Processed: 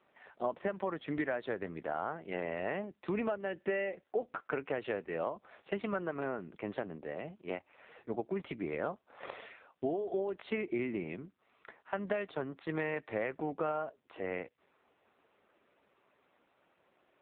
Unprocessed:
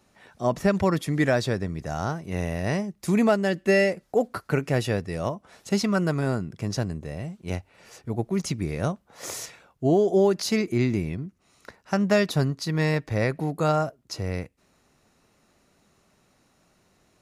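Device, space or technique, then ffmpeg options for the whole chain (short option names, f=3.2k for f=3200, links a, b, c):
voicemail: -af "highpass=360,lowpass=3.3k,acompressor=threshold=-30dB:ratio=8" -ar 8000 -c:a libopencore_amrnb -b:a 5900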